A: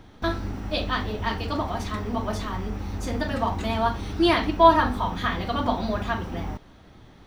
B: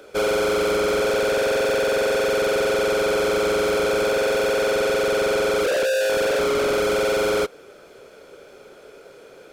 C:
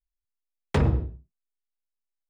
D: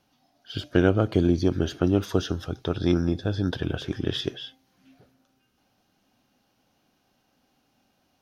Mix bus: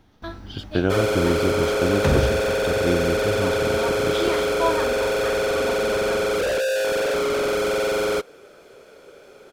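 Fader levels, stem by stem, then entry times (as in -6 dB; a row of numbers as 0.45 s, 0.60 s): -8.5 dB, -1.5 dB, +1.5 dB, -1.5 dB; 0.00 s, 0.75 s, 1.30 s, 0.00 s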